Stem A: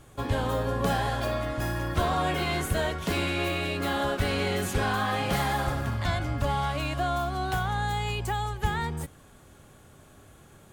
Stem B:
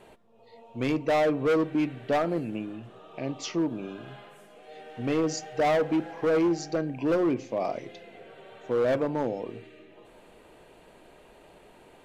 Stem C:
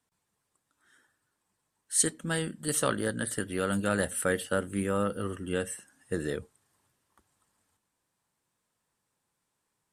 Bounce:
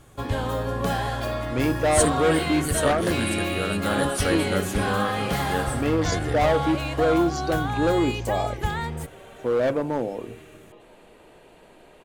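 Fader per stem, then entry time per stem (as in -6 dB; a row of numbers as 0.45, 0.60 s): +1.0, +2.5, +1.0 dB; 0.00, 0.75, 0.00 s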